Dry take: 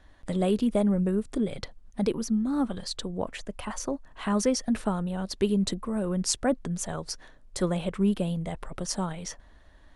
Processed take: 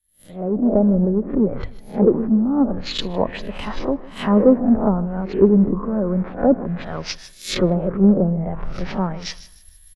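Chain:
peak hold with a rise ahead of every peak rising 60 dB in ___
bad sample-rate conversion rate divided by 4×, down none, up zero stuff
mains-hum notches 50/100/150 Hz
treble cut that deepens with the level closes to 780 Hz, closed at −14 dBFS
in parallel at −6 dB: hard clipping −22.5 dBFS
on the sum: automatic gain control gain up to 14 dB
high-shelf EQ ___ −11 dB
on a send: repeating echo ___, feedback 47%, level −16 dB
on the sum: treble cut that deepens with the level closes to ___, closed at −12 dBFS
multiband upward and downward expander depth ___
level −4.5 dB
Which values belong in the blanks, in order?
0.48 s, 7,500 Hz, 154 ms, 1,200 Hz, 100%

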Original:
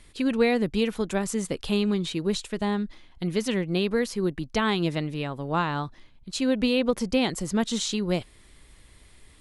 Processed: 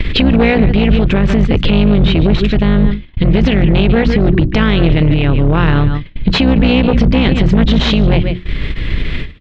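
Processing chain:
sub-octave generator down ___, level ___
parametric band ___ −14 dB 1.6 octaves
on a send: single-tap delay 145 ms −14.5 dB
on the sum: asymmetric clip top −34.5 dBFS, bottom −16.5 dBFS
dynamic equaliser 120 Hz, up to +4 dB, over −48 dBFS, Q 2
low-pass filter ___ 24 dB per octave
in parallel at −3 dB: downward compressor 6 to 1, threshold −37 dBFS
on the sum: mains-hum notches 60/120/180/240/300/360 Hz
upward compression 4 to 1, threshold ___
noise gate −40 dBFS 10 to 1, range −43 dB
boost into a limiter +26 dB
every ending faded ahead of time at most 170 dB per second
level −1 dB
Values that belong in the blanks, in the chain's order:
2 octaves, 0 dB, 870 Hz, 3,000 Hz, −31 dBFS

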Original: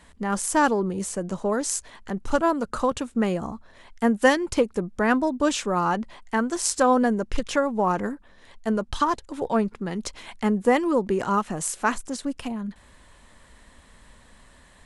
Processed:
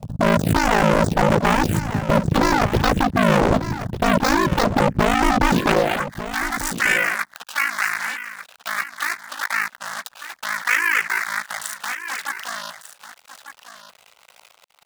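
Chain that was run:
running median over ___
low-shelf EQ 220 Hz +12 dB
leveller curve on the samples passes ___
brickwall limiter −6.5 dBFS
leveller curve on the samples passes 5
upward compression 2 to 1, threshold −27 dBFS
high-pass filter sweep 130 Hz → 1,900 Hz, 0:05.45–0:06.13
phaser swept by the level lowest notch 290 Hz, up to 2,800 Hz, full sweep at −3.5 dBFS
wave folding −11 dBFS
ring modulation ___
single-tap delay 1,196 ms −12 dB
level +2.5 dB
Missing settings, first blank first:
41 samples, 2, 27 Hz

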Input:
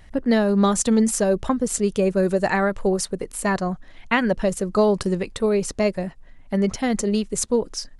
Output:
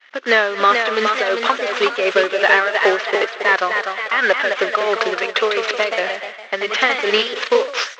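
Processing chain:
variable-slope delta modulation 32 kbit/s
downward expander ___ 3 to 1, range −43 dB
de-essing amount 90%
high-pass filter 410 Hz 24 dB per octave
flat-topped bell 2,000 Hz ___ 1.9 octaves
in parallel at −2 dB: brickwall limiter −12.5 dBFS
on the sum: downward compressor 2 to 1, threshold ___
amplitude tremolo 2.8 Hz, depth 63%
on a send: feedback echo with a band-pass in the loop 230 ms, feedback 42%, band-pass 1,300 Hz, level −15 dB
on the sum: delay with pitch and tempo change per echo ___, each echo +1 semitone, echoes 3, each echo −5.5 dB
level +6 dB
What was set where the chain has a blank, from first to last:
−38 dBFS, +12 dB, −18 dBFS, 452 ms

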